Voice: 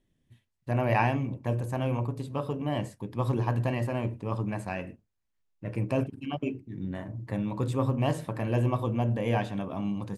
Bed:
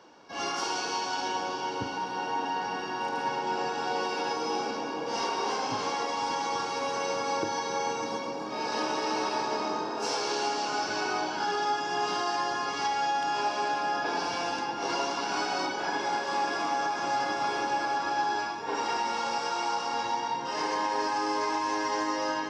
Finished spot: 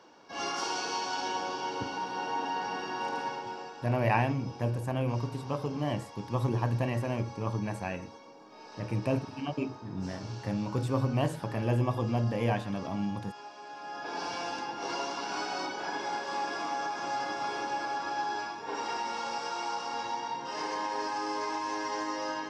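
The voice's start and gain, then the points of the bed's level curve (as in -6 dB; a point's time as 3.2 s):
3.15 s, -1.5 dB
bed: 3.14 s -2 dB
3.95 s -17.5 dB
13.62 s -17.5 dB
14.24 s -4.5 dB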